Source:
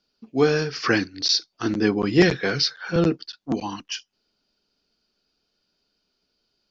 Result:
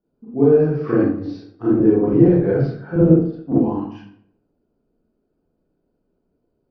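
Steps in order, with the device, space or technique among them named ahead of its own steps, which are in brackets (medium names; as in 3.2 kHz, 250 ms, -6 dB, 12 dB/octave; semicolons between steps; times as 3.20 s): television next door (compression 3:1, threshold -21 dBFS, peak gain reduction 8 dB; low-pass 580 Hz 12 dB/octave; reverberation RT60 0.65 s, pre-delay 31 ms, DRR -8.5 dB); trim +1 dB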